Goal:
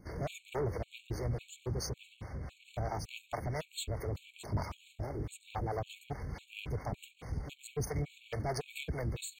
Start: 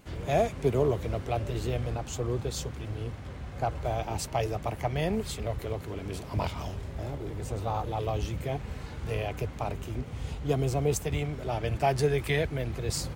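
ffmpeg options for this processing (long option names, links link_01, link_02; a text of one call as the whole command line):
ffmpeg -i in.wav -filter_complex "[0:a]asoftclip=type=tanh:threshold=-28.5dB,acrossover=split=410[link_01][link_02];[link_01]aeval=exprs='val(0)*(1-0.7/2+0.7/2*cos(2*PI*3.3*n/s))':channel_layout=same[link_03];[link_02]aeval=exprs='val(0)*(1-0.7/2-0.7/2*cos(2*PI*3.3*n/s))':channel_layout=same[link_04];[link_03][link_04]amix=inputs=2:normalize=0,atempo=1.4,afftfilt=real='re*gt(sin(2*PI*1.8*pts/sr)*(1-2*mod(floor(b*sr/1024/2200),2)),0)':imag='im*gt(sin(2*PI*1.8*pts/sr)*(1-2*mod(floor(b*sr/1024/2200),2)),0)':win_size=1024:overlap=0.75,volume=2.5dB" out.wav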